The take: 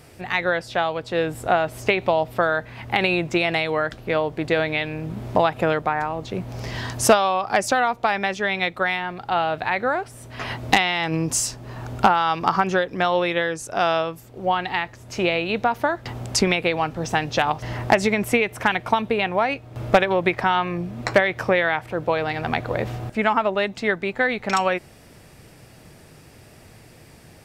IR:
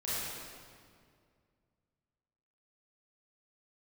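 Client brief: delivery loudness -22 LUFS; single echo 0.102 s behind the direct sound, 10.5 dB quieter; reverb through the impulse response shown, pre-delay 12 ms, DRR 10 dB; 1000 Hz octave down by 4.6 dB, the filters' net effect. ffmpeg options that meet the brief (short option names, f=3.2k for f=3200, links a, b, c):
-filter_complex "[0:a]equalizer=f=1k:t=o:g=-6.5,aecho=1:1:102:0.299,asplit=2[a][b];[1:a]atrim=start_sample=2205,adelay=12[c];[b][c]afir=irnorm=-1:irlink=0,volume=-15.5dB[d];[a][d]amix=inputs=2:normalize=0,volume=1.5dB"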